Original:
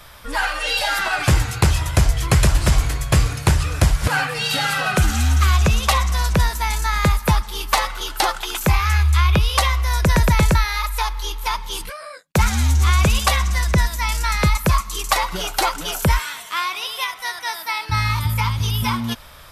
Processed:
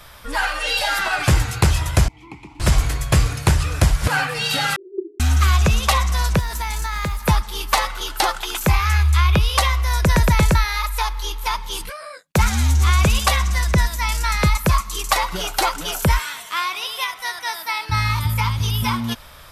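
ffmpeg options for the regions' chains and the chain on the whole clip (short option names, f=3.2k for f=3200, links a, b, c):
-filter_complex "[0:a]asettb=1/sr,asplit=3[a][b][c];[a]atrim=end=2.084[d];[b]atrim=start=2.08:end=2.6,asetpts=PTS-STARTPTS,afade=t=in:d=0.004:c=qsin,afade=t=out:st=0.516:d=0.004:c=qsin,acompressor=threshold=-16dB:ratio=3:attack=3.2:release=140:knee=1:detection=peak,acrusher=bits=5:mix=0:aa=0.5,asplit=3[e][f][g];[e]bandpass=f=300:t=q:w=8,volume=0dB[h];[f]bandpass=f=870:t=q:w=8,volume=-6dB[i];[g]bandpass=f=2.24k:t=q:w=8,volume=-9dB[j];[h][i][j]amix=inputs=3:normalize=0[k];[c]atrim=start=2.596[l];[d][k]acrossfade=d=0.004:c1=hsin:c2=qsin[m];[m][l]acrossfade=d=0.004:c1=qsin:c2=hsin,asettb=1/sr,asplit=3[n][o][p];[n]atrim=end=4.764[q];[o]atrim=start=4.76:end=5.2,asetpts=PTS-STARTPTS,afade=t=in:d=0.004:c=qsin,afade=t=out:st=0.436:d=0.004:c=qsin,asuperpass=centerf=370:order=8:qfactor=5.1,acontrast=88[r];[p]atrim=start=5.196[s];[q][r]acrossfade=d=0.004:c1=hsin:c2=qsin[t];[t][s]acrossfade=d=0.004:c1=qsin:c2=hsin,asettb=1/sr,asplit=3[u][v][w];[u]atrim=end=6.394[x];[v]atrim=start=6.39:end=7.24,asetpts=PTS-STARTPTS,afade=t=in:d=0.004:c=qsin,afade=t=out:st=0.846:d=0.004:c=qsin,acrusher=bits=8:mode=log:mix=0:aa=0.000001,acompressor=threshold=-20dB:ratio=6:attack=3.2:release=140:knee=1:detection=peak[y];[w]atrim=start=7.236[z];[x][y]acrossfade=d=0.004:c1=hsin:c2=qsin[aa];[aa][z]acrossfade=d=0.004:c1=qsin:c2=hsin"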